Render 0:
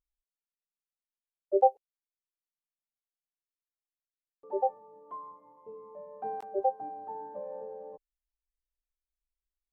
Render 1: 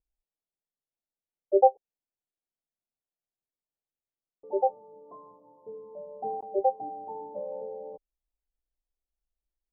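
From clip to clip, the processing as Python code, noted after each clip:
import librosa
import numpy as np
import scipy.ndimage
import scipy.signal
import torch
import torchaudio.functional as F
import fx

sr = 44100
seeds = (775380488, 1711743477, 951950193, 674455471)

y = scipy.signal.sosfilt(scipy.signal.butter(6, 840.0, 'lowpass', fs=sr, output='sos'), x)
y = y * 10.0 ** (4.0 / 20.0)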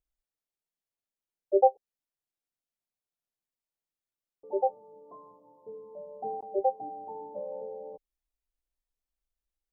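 y = fx.dynamic_eq(x, sr, hz=990.0, q=3.8, threshold_db=-43.0, ratio=4.0, max_db=-3)
y = y * 10.0 ** (-1.5 / 20.0)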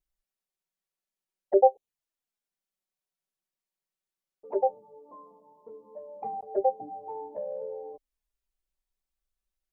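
y = fx.env_flanger(x, sr, rest_ms=5.3, full_db=-26.0)
y = y * 10.0 ** (3.5 / 20.0)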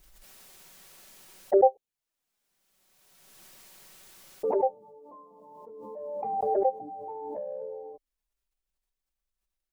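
y = fx.pre_swell(x, sr, db_per_s=26.0)
y = y * 10.0 ** (-1.5 / 20.0)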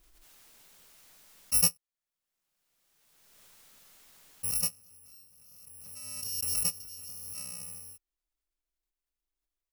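y = fx.bit_reversed(x, sr, seeds[0], block=128)
y = y * 10.0 ** (-5.0 / 20.0)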